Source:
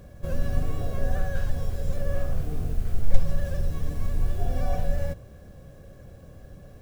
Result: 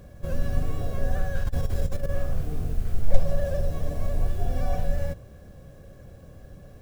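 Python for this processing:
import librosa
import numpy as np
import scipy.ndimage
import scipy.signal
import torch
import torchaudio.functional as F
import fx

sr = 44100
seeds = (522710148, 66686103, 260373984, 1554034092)

y = fx.over_compress(x, sr, threshold_db=-25.0, ratio=-0.5, at=(1.43, 2.08), fade=0.02)
y = fx.peak_eq(y, sr, hz=620.0, db=11.0, octaves=0.58, at=(3.08, 4.28))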